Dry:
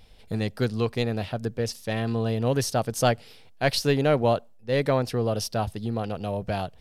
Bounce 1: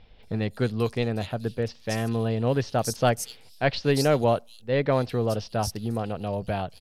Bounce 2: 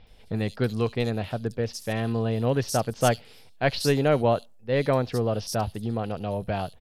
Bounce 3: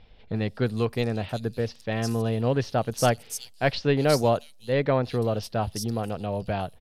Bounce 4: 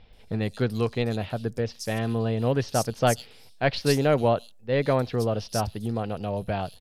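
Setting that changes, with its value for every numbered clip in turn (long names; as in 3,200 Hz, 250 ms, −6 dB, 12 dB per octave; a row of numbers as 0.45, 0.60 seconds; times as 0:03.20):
multiband delay without the direct sound, delay time: 230, 70, 360, 130 milliseconds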